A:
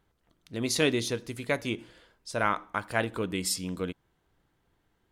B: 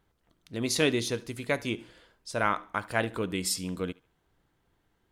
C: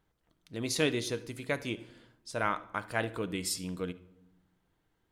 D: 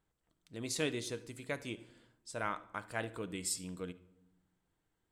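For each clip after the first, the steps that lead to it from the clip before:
thinning echo 72 ms, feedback 28%, level -21.5 dB
shoebox room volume 2800 m³, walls furnished, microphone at 0.54 m; gain -4 dB
bell 7900 Hz +10 dB 0.25 oct; gain -6.5 dB

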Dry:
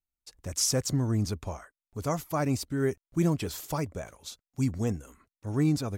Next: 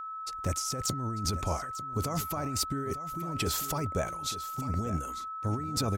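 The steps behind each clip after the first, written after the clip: negative-ratio compressor -34 dBFS, ratio -1; whine 1300 Hz -38 dBFS; echo 0.896 s -13.5 dB; gain +1.5 dB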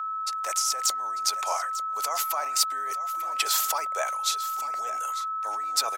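HPF 710 Hz 24 dB/oct; gain +8 dB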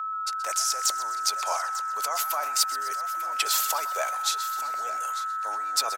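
frequency-shifting echo 0.127 s, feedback 63%, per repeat +100 Hz, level -15 dB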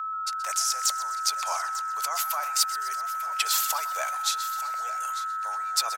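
HPF 770 Hz 12 dB/oct

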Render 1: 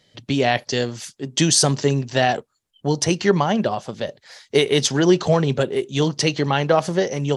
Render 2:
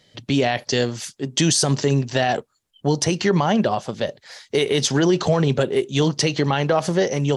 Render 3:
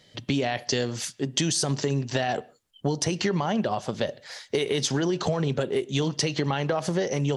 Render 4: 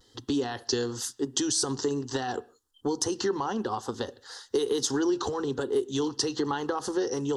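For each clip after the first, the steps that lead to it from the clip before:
limiter -11 dBFS, peak gain reduction 7 dB; gain +2.5 dB
compressor, threshold -22 dBFS, peak gain reduction 9 dB; on a send at -23 dB: reverb, pre-delay 36 ms
vibrato 1.1 Hz 57 cents; fixed phaser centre 620 Hz, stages 6; gain +1 dB

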